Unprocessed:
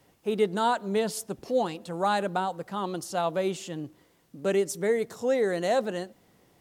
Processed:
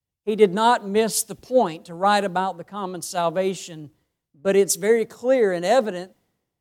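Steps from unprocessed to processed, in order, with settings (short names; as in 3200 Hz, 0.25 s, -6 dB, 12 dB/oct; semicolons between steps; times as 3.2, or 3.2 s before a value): three-band expander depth 100%; gain +6 dB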